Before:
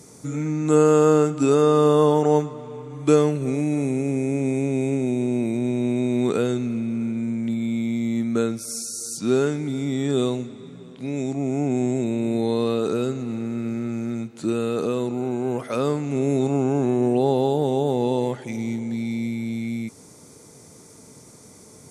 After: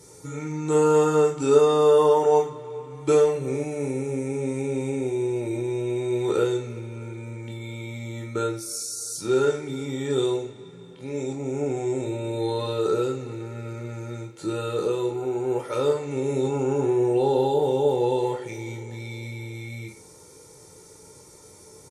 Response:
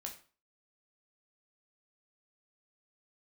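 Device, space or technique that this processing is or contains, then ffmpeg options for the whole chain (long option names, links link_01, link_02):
microphone above a desk: -filter_complex "[0:a]aecho=1:1:2.2:0.77[link_01];[1:a]atrim=start_sample=2205[link_02];[link_01][link_02]afir=irnorm=-1:irlink=0"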